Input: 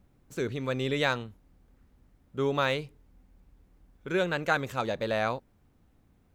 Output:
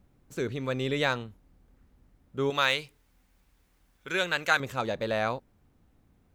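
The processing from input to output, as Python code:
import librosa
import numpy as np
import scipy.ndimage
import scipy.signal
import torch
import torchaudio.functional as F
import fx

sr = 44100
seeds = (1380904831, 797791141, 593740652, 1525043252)

y = fx.tilt_shelf(x, sr, db=-8.0, hz=910.0, at=(2.5, 4.6))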